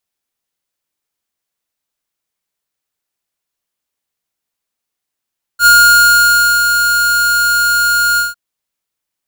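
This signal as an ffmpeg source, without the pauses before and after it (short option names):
-f lavfi -i "aevalsrc='0.531*(2*lt(mod(1420*t,1),0.5)-1)':d=2.754:s=44100,afade=t=in:d=0.07,afade=t=out:st=0.07:d=0.958:silence=0.473,afade=t=out:st=2.59:d=0.164"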